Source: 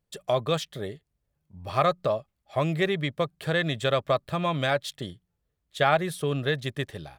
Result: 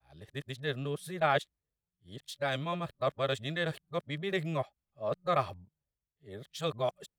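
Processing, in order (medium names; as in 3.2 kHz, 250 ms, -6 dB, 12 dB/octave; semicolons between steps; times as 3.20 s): reverse the whole clip; three bands expanded up and down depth 40%; trim -7.5 dB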